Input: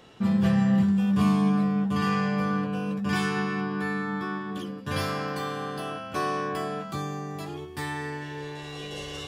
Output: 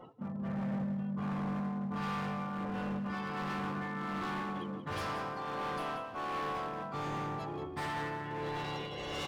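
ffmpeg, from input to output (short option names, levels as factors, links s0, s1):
-filter_complex "[0:a]asplit=3[s0][s1][s2];[s1]asetrate=33038,aresample=44100,atempo=1.33484,volume=0.398[s3];[s2]asetrate=52444,aresample=44100,atempo=0.840896,volume=0.316[s4];[s0][s3][s4]amix=inputs=3:normalize=0,equalizer=f=910:w=0.83:g=7,areverse,acompressor=threshold=0.0355:ratio=12,areverse,tremolo=f=1.4:d=0.52,afftdn=nr=27:nf=-49,volume=53.1,asoftclip=hard,volume=0.0188,asplit=2[s5][s6];[s6]aecho=0:1:182|364|546:0.282|0.0705|0.0176[s7];[s5][s7]amix=inputs=2:normalize=0"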